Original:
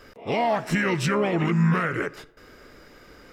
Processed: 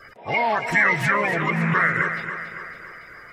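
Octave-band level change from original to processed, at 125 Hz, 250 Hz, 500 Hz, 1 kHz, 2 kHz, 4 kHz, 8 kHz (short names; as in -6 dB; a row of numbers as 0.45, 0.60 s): -3.0, -4.0, -1.5, +4.5, +9.5, -1.0, -3.0 dB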